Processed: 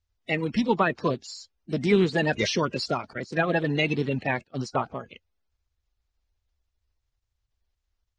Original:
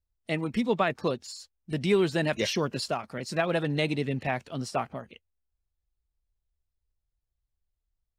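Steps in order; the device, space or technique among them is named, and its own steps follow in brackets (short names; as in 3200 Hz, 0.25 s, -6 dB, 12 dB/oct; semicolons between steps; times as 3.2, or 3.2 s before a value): 3.13–4.89 gate -35 dBFS, range -22 dB; clip after many re-uploads (LPF 6800 Hz 24 dB/oct; bin magnitudes rounded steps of 30 dB); gain +3.5 dB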